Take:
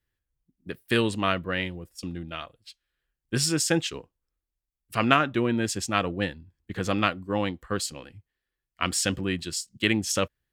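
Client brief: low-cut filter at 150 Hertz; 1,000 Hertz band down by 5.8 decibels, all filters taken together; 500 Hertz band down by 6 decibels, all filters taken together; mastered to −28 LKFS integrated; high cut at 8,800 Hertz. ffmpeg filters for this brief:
ffmpeg -i in.wav -af "highpass=150,lowpass=8800,equalizer=frequency=500:width_type=o:gain=-6,equalizer=frequency=1000:width_type=o:gain=-7,volume=1.5dB" out.wav

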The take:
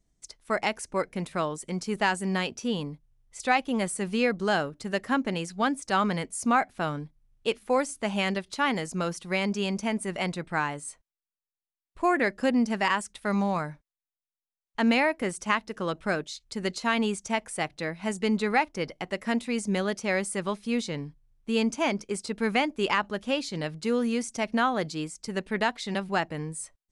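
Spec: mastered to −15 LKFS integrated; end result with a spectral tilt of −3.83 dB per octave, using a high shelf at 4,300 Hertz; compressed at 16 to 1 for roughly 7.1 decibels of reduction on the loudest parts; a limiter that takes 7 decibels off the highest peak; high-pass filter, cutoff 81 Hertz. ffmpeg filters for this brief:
ffmpeg -i in.wav -af "highpass=81,highshelf=frequency=4300:gain=5,acompressor=threshold=-25dB:ratio=16,volume=18dB,alimiter=limit=-3.5dB:level=0:latency=1" out.wav

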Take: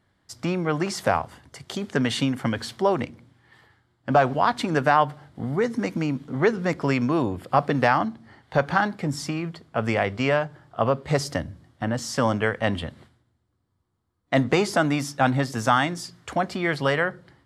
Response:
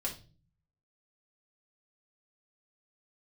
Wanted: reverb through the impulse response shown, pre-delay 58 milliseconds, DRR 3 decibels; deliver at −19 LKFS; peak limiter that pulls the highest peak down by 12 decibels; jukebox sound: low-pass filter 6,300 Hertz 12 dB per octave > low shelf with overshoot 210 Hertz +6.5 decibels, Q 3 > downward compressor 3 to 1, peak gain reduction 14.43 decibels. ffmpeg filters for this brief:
-filter_complex "[0:a]alimiter=limit=-18dB:level=0:latency=1,asplit=2[link_01][link_02];[1:a]atrim=start_sample=2205,adelay=58[link_03];[link_02][link_03]afir=irnorm=-1:irlink=0,volume=-5dB[link_04];[link_01][link_04]amix=inputs=2:normalize=0,lowpass=6300,lowshelf=frequency=210:width_type=q:width=3:gain=6.5,acompressor=threshold=-33dB:ratio=3,volume=14.5dB"

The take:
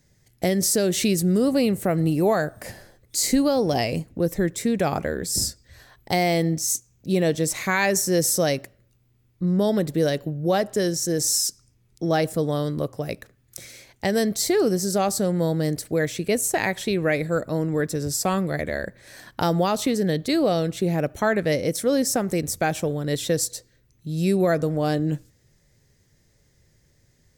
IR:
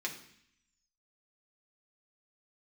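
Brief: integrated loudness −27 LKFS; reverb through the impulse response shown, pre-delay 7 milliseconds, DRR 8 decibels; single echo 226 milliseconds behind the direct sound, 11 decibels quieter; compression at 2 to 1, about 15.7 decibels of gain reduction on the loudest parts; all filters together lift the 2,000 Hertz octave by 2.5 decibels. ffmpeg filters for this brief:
-filter_complex "[0:a]equalizer=frequency=2000:width_type=o:gain=3,acompressor=threshold=-46dB:ratio=2,aecho=1:1:226:0.282,asplit=2[link_01][link_02];[1:a]atrim=start_sample=2205,adelay=7[link_03];[link_02][link_03]afir=irnorm=-1:irlink=0,volume=-10.5dB[link_04];[link_01][link_04]amix=inputs=2:normalize=0,volume=9.5dB"

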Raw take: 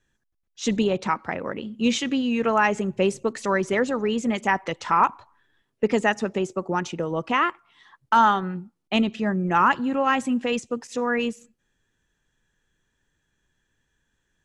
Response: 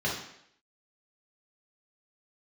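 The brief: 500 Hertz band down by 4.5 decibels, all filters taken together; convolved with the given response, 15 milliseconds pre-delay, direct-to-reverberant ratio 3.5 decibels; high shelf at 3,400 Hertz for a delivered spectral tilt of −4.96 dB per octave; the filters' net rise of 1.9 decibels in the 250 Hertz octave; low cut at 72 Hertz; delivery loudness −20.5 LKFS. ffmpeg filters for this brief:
-filter_complex "[0:a]highpass=72,equalizer=frequency=250:width_type=o:gain=3.5,equalizer=frequency=500:width_type=o:gain=-6.5,highshelf=frequency=3400:gain=-7,asplit=2[link_01][link_02];[1:a]atrim=start_sample=2205,adelay=15[link_03];[link_02][link_03]afir=irnorm=-1:irlink=0,volume=-13dB[link_04];[link_01][link_04]amix=inputs=2:normalize=0,volume=2dB"

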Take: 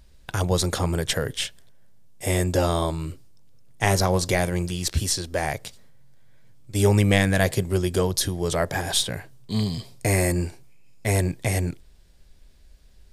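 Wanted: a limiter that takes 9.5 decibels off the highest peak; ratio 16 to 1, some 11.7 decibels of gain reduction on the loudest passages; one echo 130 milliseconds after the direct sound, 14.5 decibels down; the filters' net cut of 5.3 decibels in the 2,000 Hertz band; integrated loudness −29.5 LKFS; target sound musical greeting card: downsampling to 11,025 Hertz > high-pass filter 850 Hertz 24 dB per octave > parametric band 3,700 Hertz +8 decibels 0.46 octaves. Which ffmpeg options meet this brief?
ffmpeg -i in.wav -af "equalizer=frequency=2000:width_type=o:gain=-7,acompressor=threshold=-25dB:ratio=16,alimiter=limit=-21dB:level=0:latency=1,aecho=1:1:130:0.188,aresample=11025,aresample=44100,highpass=frequency=850:width=0.5412,highpass=frequency=850:width=1.3066,equalizer=frequency=3700:width_type=o:width=0.46:gain=8,volume=8.5dB" out.wav

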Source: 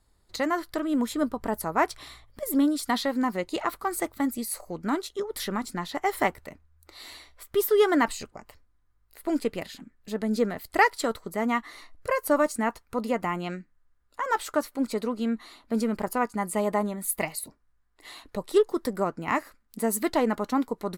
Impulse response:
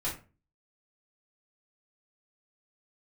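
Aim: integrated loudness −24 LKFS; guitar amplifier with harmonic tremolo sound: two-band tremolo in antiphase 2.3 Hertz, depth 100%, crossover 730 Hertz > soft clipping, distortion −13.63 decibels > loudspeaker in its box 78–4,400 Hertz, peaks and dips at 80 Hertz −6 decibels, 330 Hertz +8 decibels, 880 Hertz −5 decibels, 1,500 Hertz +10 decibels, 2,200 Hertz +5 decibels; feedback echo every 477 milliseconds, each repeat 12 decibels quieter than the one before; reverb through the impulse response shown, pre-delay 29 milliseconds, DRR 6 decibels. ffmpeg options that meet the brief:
-filter_complex "[0:a]aecho=1:1:477|954|1431:0.251|0.0628|0.0157,asplit=2[link_01][link_02];[1:a]atrim=start_sample=2205,adelay=29[link_03];[link_02][link_03]afir=irnorm=-1:irlink=0,volume=-11dB[link_04];[link_01][link_04]amix=inputs=2:normalize=0,acrossover=split=730[link_05][link_06];[link_05]aeval=exprs='val(0)*(1-1/2+1/2*cos(2*PI*2.3*n/s))':channel_layout=same[link_07];[link_06]aeval=exprs='val(0)*(1-1/2-1/2*cos(2*PI*2.3*n/s))':channel_layout=same[link_08];[link_07][link_08]amix=inputs=2:normalize=0,asoftclip=threshold=-19.5dB,highpass=78,equalizer=frequency=80:width_type=q:width=4:gain=-6,equalizer=frequency=330:width_type=q:width=4:gain=8,equalizer=frequency=880:width_type=q:width=4:gain=-5,equalizer=frequency=1500:width_type=q:width=4:gain=10,equalizer=frequency=2200:width_type=q:width=4:gain=5,lowpass=frequency=4400:width=0.5412,lowpass=frequency=4400:width=1.3066,volume=6dB"

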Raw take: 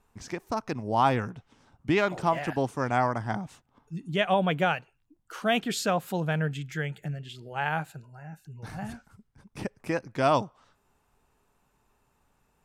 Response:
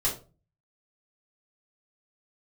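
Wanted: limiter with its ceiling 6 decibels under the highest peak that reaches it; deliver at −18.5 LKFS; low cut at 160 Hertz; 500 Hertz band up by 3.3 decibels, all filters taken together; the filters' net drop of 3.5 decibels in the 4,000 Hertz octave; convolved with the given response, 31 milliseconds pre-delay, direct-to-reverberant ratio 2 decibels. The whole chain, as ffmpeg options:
-filter_complex "[0:a]highpass=160,equalizer=frequency=500:width_type=o:gain=4.5,equalizer=frequency=4000:width_type=o:gain=-5,alimiter=limit=-14.5dB:level=0:latency=1,asplit=2[link_01][link_02];[1:a]atrim=start_sample=2205,adelay=31[link_03];[link_02][link_03]afir=irnorm=-1:irlink=0,volume=-10dB[link_04];[link_01][link_04]amix=inputs=2:normalize=0,volume=8.5dB"

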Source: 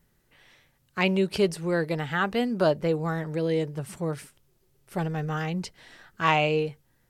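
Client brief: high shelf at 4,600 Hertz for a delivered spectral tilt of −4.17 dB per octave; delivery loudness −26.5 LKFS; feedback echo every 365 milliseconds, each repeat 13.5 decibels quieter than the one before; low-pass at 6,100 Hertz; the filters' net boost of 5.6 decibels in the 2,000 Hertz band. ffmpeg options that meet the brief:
ffmpeg -i in.wav -af "lowpass=6100,equalizer=frequency=2000:width_type=o:gain=9,highshelf=frequency=4600:gain=-9,aecho=1:1:365|730:0.211|0.0444,volume=-1dB" out.wav

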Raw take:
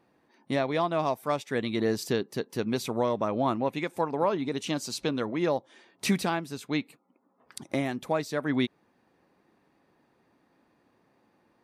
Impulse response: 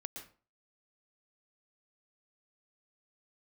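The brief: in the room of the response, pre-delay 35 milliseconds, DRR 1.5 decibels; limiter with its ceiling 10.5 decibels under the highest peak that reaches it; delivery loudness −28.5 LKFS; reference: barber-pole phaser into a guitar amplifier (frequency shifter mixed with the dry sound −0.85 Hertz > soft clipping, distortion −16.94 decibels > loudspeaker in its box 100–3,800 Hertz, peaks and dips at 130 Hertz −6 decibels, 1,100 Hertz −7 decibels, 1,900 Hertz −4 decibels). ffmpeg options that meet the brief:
-filter_complex "[0:a]alimiter=level_in=1dB:limit=-24dB:level=0:latency=1,volume=-1dB,asplit=2[link_01][link_02];[1:a]atrim=start_sample=2205,adelay=35[link_03];[link_02][link_03]afir=irnorm=-1:irlink=0,volume=1dB[link_04];[link_01][link_04]amix=inputs=2:normalize=0,asplit=2[link_05][link_06];[link_06]afreqshift=-0.85[link_07];[link_05][link_07]amix=inputs=2:normalize=1,asoftclip=threshold=-28.5dB,highpass=100,equalizer=frequency=130:width_type=q:width=4:gain=-6,equalizer=frequency=1100:width_type=q:width=4:gain=-7,equalizer=frequency=1900:width_type=q:width=4:gain=-4,lowpass=frequency=3800:width=0.5412,lowpass=frequency=3800:width=1.3066,volume=10.5dB"

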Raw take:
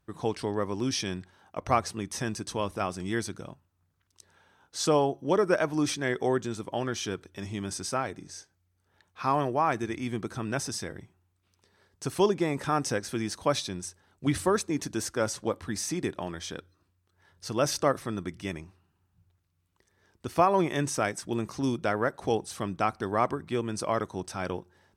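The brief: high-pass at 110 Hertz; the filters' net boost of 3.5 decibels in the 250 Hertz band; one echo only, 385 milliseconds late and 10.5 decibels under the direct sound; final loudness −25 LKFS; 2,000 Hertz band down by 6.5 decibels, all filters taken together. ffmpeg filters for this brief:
ffmpeg -i in.wav -af "highpass=110,equalizer=frequency=250:width_type=o:gain=5,equalizer=frequency=2000:width_type=o:gain=-9,aecho=1:1:385:0.299,volume=4dB" out.wav

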